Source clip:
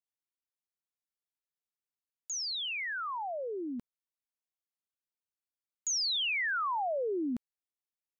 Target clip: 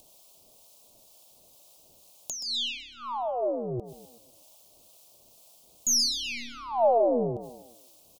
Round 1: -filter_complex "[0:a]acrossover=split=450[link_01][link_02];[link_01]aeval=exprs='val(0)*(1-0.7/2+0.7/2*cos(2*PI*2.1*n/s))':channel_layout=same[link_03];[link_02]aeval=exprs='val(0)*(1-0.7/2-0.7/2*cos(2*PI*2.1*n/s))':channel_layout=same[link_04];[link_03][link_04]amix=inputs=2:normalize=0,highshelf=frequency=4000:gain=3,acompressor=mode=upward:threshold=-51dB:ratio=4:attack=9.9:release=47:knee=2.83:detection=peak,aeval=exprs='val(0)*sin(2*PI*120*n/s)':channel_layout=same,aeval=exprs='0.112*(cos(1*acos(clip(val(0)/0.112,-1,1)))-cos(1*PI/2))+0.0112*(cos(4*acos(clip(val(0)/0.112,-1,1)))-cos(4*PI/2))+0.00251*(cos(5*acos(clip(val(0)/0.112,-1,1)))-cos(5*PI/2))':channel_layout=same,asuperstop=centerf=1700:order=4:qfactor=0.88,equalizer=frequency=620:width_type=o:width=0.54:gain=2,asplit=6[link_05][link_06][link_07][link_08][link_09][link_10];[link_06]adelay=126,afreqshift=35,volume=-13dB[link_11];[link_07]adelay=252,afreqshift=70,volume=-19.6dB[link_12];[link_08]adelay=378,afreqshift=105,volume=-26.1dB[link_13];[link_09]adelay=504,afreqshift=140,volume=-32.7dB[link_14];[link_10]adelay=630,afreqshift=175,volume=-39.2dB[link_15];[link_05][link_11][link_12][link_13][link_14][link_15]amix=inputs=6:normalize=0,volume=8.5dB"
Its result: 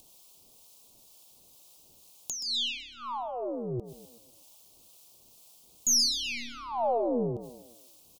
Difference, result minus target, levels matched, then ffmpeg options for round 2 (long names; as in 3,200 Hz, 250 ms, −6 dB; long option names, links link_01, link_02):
500 Hz band −4.0 dB
-filter_complex "[0:a]acrossover=split=450[link_01][link_02];[link_01]aeval=exprs='val(0)*(1-0.7/2+0.7/2*cos(2*PI*2.1*n/s))':channel_layout=same[link_03];[link_02]aeval=exprs='val(0)*(1-0.7/2-0.7/2*cos(2*PI*2.1*n/s))':channel_layout=same[link_04];[link_03][link_04]amix=inputs=2:normalize=0,highshelf=frequency=4000:gain=3,acompressor=mode=upward:threshold=-51dB:ratio=4:attack=9.9:release=47:knee=2.83:detection=peak,aeval=exprs='val(0)*sin(2*PI*120*n/s)':channel_layout=same,aeval=exprs='0.112*(cos(1*acos(clip(val(0)/0.112,-1,1)))-cos(1*PI/2))+0.0112*(cos(4*acos(clip(val(0)/0.112,-1,1)))-cos(4*PI/2))+0.00251*(cos(5*acos(clip(val(0)/0.112,-1,1)))-cos(5*PI/2))':channel_layout=same,asuperstop=centerf=1700:order=4:qfactor=0.88,equalizer=frequency=620:width_type=o:width=0.54:gain=11,asplit=6[link_05][link_06][link_07][link_08][link_09][link_10];[link_06]adelay=126,afreqshift=35,volume=-13dB[link_11];[link_07]adelay=252,afreqshift=70,volume=-19.6dB[link_12];[link_08]adelay=378,afreqshift=105,volume=-26.1dB[link_13];[link_09]adelay=504,afreqshift=140,volume=-32.7dB[link_14];[link_10]adelay=630,afreqshift=175,volume=-39.2dB[link_15];[link_05][link_11][link_12][link_13][link_14][link_15]amix=inputs=6:normalize=0,volume=8.5dB"